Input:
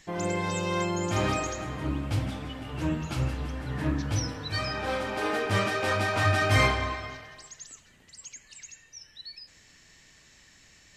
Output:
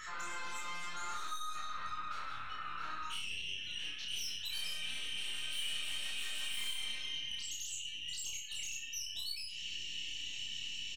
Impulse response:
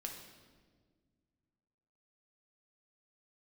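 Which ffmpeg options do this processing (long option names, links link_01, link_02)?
-filter_complex "[0:a]acompressor=mode=upward:threshold=-35dB:ratio=2.5,asetnsamples=nb_out_samples=441:pad=0,asendcmd='3.1 highpass f 2900',highpass=frequency=1300:width_type=q:width=13,aeval=exprs='(tanh(63.1*val(0)+0.55)-tanh(0.55))/63.1':channel_layout=same,bandreject=frequency=4900:width=18,afftdn=noise_reduction=18:noise_floor=-50,acompressor=threshold=-38dB:ratio=10,flanger=delay=18:depth=6:speed=0.63,highshelf=frequency=4700:gain=7.5,asplit=2[link_01][link_02];[link_02]adelay=31,volume=-2dB[link_03];[link_01][link_03]amix=inputs=2:normalize=0,aecho=1:1:64|128|192|256:0.355|0.121|0.041|0.0139,volume=-1dB"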